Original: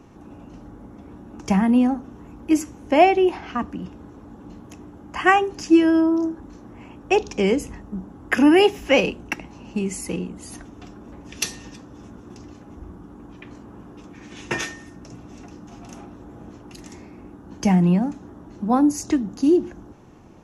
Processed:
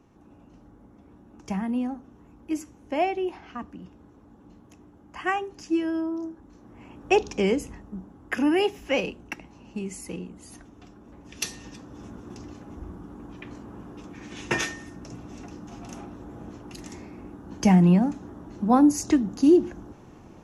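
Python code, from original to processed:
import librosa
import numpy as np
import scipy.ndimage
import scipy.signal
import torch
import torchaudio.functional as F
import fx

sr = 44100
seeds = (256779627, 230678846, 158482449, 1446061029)

y = fx.gain(x, sr, db=fx.line((6.44, -10.5), (7.12, -1.5), (8.25, -8.0), (11.05, -8.0), (12.07, 0.0)))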